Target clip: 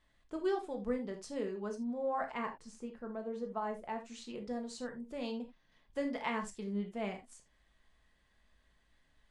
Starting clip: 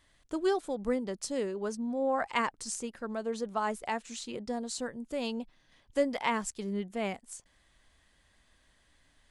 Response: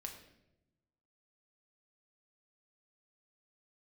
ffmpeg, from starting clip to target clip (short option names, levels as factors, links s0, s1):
-filter_complex "[0:a]asetnsamples=n=441:p=0,asendcmd='2.33 lowpass f 1000;4.06 lowpass f 3500',lowpass=f=3000:p=1[s0];[1:a]atrim=start_sample=2205,atrim=end_sample=3969[s1];[s0][s1]afir=irnorm=-1:irlink=0,volume=0.891"